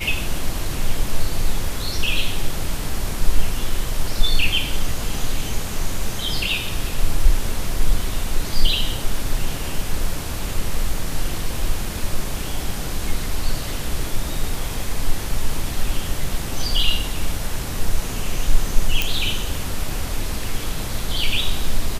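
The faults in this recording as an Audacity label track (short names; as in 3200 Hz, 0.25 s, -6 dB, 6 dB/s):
19.020000	19.020000	pop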